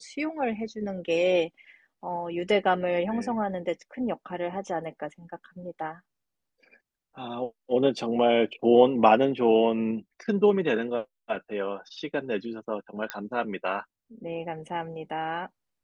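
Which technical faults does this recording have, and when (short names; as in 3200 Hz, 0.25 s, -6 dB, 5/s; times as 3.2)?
13.1 pop -14 dBFS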